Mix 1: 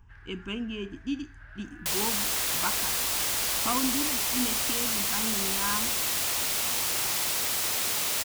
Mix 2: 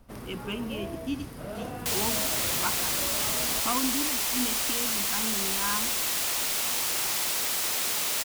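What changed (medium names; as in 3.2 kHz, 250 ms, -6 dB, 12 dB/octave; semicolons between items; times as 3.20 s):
first sound: remove ladder band-pass 1.7 kHz, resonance 85%; master: add peaking EQ 93 Hz -7 dB 1 oct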